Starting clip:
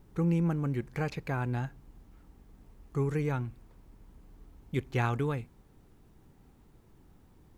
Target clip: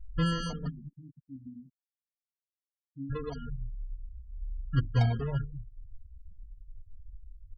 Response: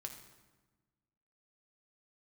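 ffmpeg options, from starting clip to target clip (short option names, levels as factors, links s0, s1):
-filter_complex "[0:a]aemphasis=mode=reproduction:type=riaa,afwtdn=0.0398,equalizer=f=110:w=0.36:g=-5,bandreject=f=50:t=h:w=6,bandreject=f=100:t=h:w=6,bandreject=f=150:t=h:w=6,bandreject=f=200:t=h:w=6,bandreject=f=250:t=h:w=6,bandreject=f=300:t=h:w=6,bandreject=f=350:t=h:w=6,bandreject=f=400:t=h:w=6,aecho=1:1:1.4:0.52,acrusher=samples=29:mix=1:aa=0.000001,asplit=3[s0][s1][s2];[s0]afade=t=out:st=0.67:d=0.02[s3];[s1]asplit=3[s4][s5][s6];[s4]bandpass=f=270:t=q:w=8,volume=1[s7];[s5]bandpass=f=2290:t=q:w=8,volume=0.501[s8];[s6]bandpass=f=3010:t=q:w=8,volume=0.355[s9];[s7][s8][s9]amix=inputs=3:normalize=0,afade=t=in:st=0.67:d=0.02,afade=t=out:st=3.09:d=0.02[s10];[s2]afade=t=in:st=3.09:d=0.02[s11];[s3][s10][s11]amix=inputs=3:normalize=0,aecho=1:1:200:0.178,acrusher=bits=7:mix=0:aa=0.000001,afftfilt=real='re*gte(hypot(re,im),0.0282)':imag='im*gte(hypot(re,im),0.0282)':win_size=1024:overlap=0.75,asplit=2[s12][s13];[s13]adelay=3,afreqshift=-1.1[s14];[s12][s14]amix=inputs=2:normalize=1"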